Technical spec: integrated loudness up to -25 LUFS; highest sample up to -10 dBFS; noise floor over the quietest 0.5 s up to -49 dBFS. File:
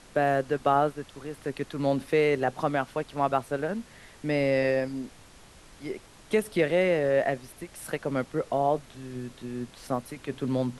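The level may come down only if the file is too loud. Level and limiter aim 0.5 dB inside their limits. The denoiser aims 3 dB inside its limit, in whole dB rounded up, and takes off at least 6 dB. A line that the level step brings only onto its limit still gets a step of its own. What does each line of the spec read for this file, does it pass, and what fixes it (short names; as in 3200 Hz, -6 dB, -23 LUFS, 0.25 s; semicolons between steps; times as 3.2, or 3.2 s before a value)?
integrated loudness -28.0 LUFS: OK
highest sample -11.0 dBFS: OK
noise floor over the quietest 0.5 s -52 dBFS: OK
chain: none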